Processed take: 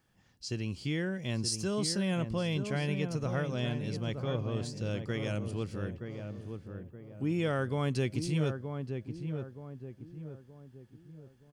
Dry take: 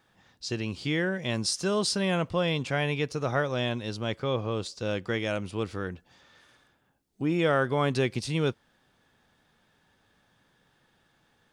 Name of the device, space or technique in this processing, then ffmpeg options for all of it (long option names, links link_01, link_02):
smiley-face EQ: -filter_complex "[0:a]lowshelf=frequency=190:gain=6,equalizer=frequency=1000:width_type=o:width=2.6:gain=-5.5,highshelf=frequency=8400:gain=5,bandreject=frequency=3700:width=8.1,asplit=2[link_01][link_02];[link_02]adelay=923,lowpass=frequency=1100:poles=1,volume=-6dB,asplit=2[link_03][link_04];[link_04]adelay=923,lowpass=frequency=1100:poles=1,volume=0.44,asplit=2[link_05][link_06];[link_06]adelay=923,lowpass=frequency=1100:poles=1,volume=0.44,asplit=2[link_07][link_08];[link_08]adelay=923,lowpass=frequency=1100:poles=1,volume=0.44,asplit=2[link_09][link_10];[link_10]adelay=923,lowpass=frequency=1100:poles=1,volume=0.44[link_11];[link_01][link_03][link_05][link_07][link_09][link_11]amix=inputs=6:normalize=0,volume=-5dB"